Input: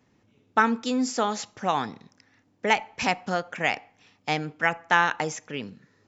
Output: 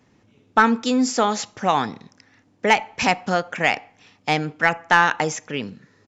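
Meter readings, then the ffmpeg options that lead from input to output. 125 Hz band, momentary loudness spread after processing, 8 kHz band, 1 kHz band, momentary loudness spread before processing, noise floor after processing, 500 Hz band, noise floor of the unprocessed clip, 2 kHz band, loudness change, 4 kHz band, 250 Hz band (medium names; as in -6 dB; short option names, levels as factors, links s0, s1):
+6.0 dB, 12 LU, no reading, +5.5 dB, 13 LU, -60 dBFS, +5.5 dB, -66 dBFS, +5.0 dB, +5.5 dB, +5.5 dB, +6.0 dB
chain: -af "acontrast=54,aresample=22050,aresample=44100"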